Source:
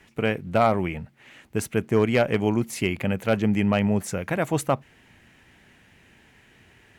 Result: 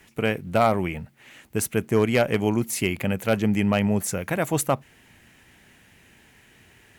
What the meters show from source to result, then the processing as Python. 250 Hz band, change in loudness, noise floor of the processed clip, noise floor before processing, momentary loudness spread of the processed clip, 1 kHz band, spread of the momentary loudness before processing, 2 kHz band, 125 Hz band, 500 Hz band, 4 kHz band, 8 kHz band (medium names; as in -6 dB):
0.0 dB, +0.5 dB, -56 dBFS, -57 dBFS, 7 LU, 0.0 dB, 8 LU, +0.5 dB, 0.0 dB, 0.0 dB, +2.0 dB, +6.5 dB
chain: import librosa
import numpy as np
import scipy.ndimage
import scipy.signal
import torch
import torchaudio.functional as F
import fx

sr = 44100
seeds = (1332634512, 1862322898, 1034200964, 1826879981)

y = fx.high_shelf(x, sr, hz=7600.0, db=12.0)